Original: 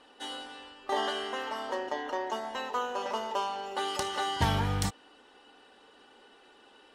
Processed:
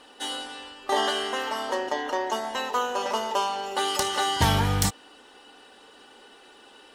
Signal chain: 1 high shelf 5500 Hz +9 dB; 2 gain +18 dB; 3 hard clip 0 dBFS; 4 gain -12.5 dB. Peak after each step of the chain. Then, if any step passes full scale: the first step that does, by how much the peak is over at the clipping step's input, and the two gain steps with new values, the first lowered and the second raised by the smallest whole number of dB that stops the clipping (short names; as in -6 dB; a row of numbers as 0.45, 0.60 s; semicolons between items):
-9.0, +9.0, 0.0, -12.5 dBFS; step 2, 9.0 dB; step 2 +9 dB, step 4 -3.5 dB